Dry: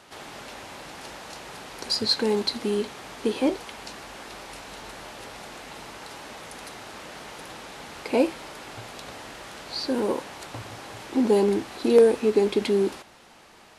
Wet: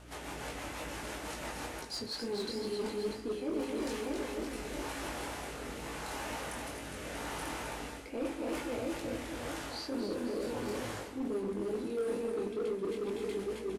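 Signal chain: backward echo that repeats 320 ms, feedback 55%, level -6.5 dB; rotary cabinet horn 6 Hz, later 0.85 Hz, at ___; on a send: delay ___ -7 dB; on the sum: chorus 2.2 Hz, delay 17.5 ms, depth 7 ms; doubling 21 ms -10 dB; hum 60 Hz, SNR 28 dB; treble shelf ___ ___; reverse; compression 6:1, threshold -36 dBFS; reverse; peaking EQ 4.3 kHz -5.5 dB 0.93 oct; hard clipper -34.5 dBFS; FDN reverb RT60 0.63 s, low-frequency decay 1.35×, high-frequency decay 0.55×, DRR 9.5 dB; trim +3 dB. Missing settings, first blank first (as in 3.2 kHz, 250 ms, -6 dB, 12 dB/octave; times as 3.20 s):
1.92 s, 265 ms, 7.9 kHz, +4.5 dB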